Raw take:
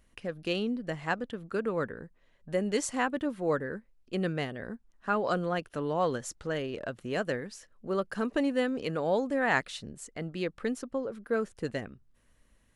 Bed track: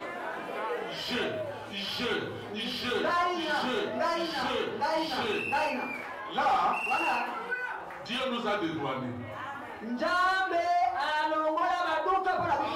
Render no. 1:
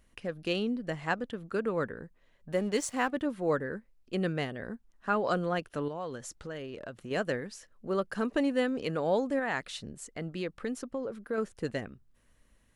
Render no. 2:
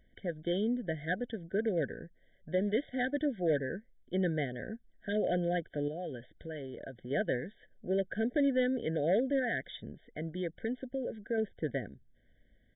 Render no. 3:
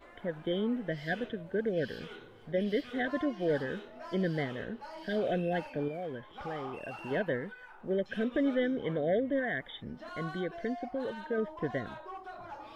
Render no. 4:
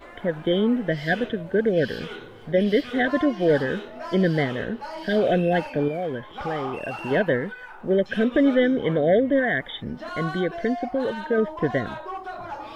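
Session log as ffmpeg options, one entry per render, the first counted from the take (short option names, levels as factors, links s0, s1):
-filter_complex "[0:a]asettb=1/sr,asplit=3[s0][s1][s2];[s0]atrim=end=2.524[s3];[s1]atrim=start=2.52:end=3.13,asetpts=PTS-STARTPTS,afade=t=in:d=0.004:c=qsin,afade=t=out:st=0.606:d=0.004:c=qsin,aeval=exprs='sgn(val(0))*max(abs(val(0))-0.00335,0)':c=same[s4];[s2]atrim=start=3.126[s5];[s3][s4]acrossfade=d=0.004:c1=hsin:c2=qsin[s6];[s6][s5]acrossfade=d=0.004:c1=qsin:c2=hsin,asettb=1/sr,asplit=3[s7][s8][s9];[s7]atrim=end=5.884[s10];[s8]atrim=start=5.88:end=7.11,asetpts=PTS-STARTPTS,afade=t=in:d=0.004:c=qsin,afade=t=out:st=1.226:d=0.004:c=qsin,acompressor=threshold=0.00891:ratio=2:attack=3.2:release=140:knee=1:detection=peak[s11];[s9]atrim=start=7.106[s12];[s10][s11]acrossfade=d=0.004:c1=hsin:c2=qsin[s13];[s13][s12]acrossfade=d=0.004:c1=qsin:c2=hsin,asettb=1/sr,asplit=3[s14][s15][s16];[s14]atrim=end=9.394[s17];[s15]atrim=start=9.39:end=11.38,asetpts=PTS-STARTPTS,afade=t=in:d=0.004:c=qsin,afade=t=out:st=1.986:d=0.004:c=qsin,acompressor=threshold=0.0282:ratio=2:attack=3.2:release=140:knee=1:detection=peak[s18];[s16]atrim=start=11.376[s19];[s17][s18]acrossfade=d=0.004:c1=hsin:c2=qsin[s20];[s20][s19]acrossfade=d=0.004:c1=qsin:c2=hsin"
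-af "aresample=8000,asoftclip=type=hard:threshold=0.0708,aresample=44100,afftfilt=real='re*eq(mod(floor(b*sr/1024/750),2),0)':imag='im*eq(mod(floor(b*sr/1024/750),2),0)':win_size=1024:overlap=0.75"
-filter_complex "[1:a]volume=0.141[s0];[0:a][s0]amix=inputs=2:normalize=0"
-af "volume=3.35"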